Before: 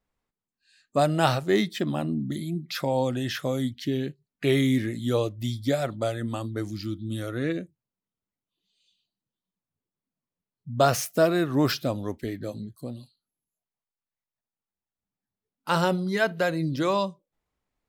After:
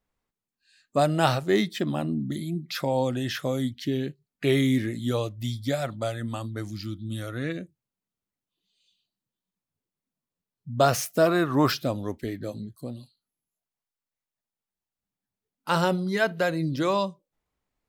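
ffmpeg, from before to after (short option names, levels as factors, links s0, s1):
-filter_complex "[0:a]asettb=1/sr,asplit=3[s0][s1][s2];[s0]atrim=end=5.114[s3];[s1]atrim=start=5.11:end=7.61,asetpts=PTS-STARTPTS,afade=t=in:d=0.004:c=qsin,afade=t=out:st=2.496:d=0.004:c=qsin,equalizer=f=380:w=1.5:g=-6[s4];[s2]atrim=start=7.606[s5];[s3][s4]acrossfade=d=0.004:c1=hsin:c2=qsin[s6];[s6][s5]acrossfade=d=0.004:c1=qsin:c2=hsin,asettb=1/sr,asplit=3[s7][s8][s9];[s7]atrim=end=11.264[s10];[s8]atrim=start=11.26:end=11.7,asetpts=PTS-STARTPTS,afade=t=in:d=0.004:c=qsin,afade=t=out:st=0.436:d=0.004:c=qsin,equalizer=f=1100:w=1.5:g=8.5[s11];[s9]atrim=start=11.696[s12];[s10][s11]acrossfade=d=0.004:c1=hsin:c2=qsin[s13];[s13][s12]acrossfade=d=0.004:c1=qsin:c2=hsin"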